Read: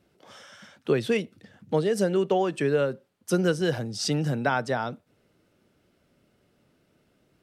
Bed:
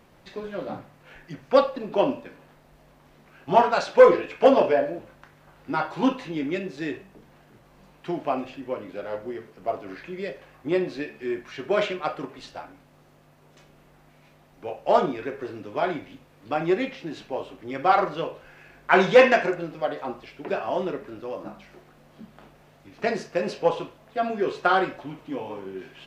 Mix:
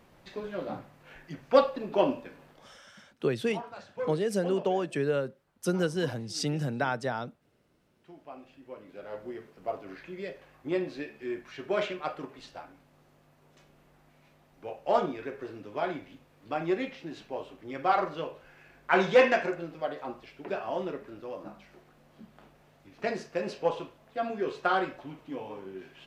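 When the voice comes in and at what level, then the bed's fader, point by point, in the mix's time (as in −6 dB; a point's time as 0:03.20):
2.35 s, −4.5 dB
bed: 0:02.48 −3 dB
0:02.93 −22 dB
0:08.14 −22 dB
0:09.29 −6 dB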